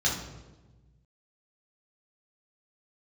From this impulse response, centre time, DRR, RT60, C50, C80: 41 ms, −5.0 dB, 1.2 s, 4.0 dB, 8.0 dB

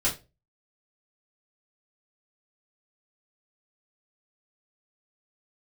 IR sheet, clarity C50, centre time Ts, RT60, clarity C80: 11.5 dB, 23 ms, 0.30 s, 19.0 dB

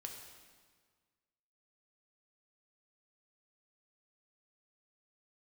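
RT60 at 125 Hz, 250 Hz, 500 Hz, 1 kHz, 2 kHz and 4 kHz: 1.9, 1.8, 1.6, 1.6, 1.5, 1.4 seconds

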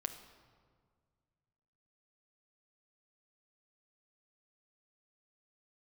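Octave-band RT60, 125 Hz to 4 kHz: 2.8, 2.3, 1.9, 1.7, 1.3, 1.1 seconds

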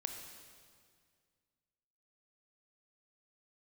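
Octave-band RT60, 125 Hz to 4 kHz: 2.5, 2.3, 2.1, 1.9, 1.9, 1.8 seconds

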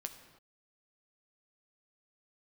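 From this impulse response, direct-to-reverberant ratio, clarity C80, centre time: 6.0 dB, 11.0 dB, 16 ms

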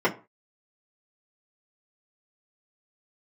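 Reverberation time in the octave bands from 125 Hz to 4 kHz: 0.35, 0.30, 0.35, 0.35, 0.25, 0.20 seconds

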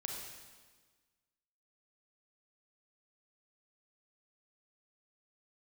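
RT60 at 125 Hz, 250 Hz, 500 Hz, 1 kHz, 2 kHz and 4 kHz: 1.5, 1.6, 1.5, 1.4, 1.4, 1.4 seconds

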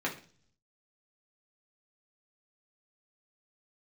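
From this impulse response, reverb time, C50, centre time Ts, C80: 0.45 s, 11.0 dB, 17 ms, 16.0 dB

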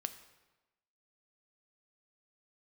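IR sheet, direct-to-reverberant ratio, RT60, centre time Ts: 9.5 dB, 1.1 s, 9 ms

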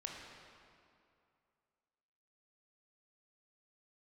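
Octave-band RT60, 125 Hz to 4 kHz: 2.4, 2.4, 2.5, 2.5, 2.1, 1.7 seconds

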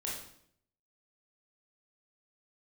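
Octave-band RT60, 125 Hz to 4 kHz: 0.90, 0.80, 0.70, 0.60, 0.60, 0.60 seconds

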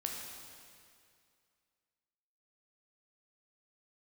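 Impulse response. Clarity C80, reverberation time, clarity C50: 3.0 dB, 2.3 s, 1.5 dB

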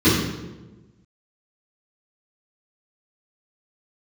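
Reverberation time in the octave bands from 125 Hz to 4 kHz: 1.5, 1.5, 1.3, 0.95, 0.85, 0.80 seconds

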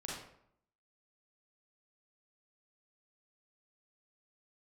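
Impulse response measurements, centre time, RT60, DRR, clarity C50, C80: 59 ms, 0.70 s, −5.0 dB, 0.0 dB, 4.5 dB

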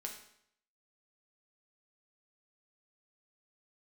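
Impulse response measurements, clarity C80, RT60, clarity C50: 9.5 dB, 0.70 s, 6.5 dB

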